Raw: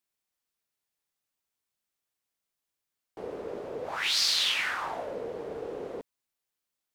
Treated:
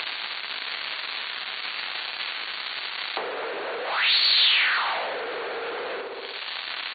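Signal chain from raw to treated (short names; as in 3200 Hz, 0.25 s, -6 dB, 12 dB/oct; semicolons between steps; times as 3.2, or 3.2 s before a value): vibrato 11 Hz 23 cents; crackle 260/s -55 dBFS; in parallel at -4 dB: soft clip -21 dBFS, distortion -17 dB; on the sum: feedback echo 62 ms, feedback 49%, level -9 dB; upward compressor, threshold -33 dBFS; overdrive pedal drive 33 dB, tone 4200 Hz, clips at -10 dBFS; high shelf 2400 Hz -6.5 dB; on a send at -13 dB: reverb RT60 0.55 s, pre-delay 3 ms; on the sum: compressor 20:1, threshold -25 dBFS, peak gain reduction 10.5 dB; weighting filter ITU-R 468; AC-3 32 kbps 32000 Hz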